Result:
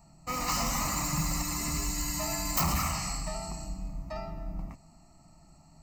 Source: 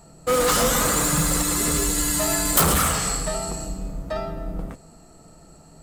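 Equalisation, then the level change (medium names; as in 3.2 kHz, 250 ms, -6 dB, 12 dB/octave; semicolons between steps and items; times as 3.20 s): static phaser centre 2.3 kHz, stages 8; -6.0 dB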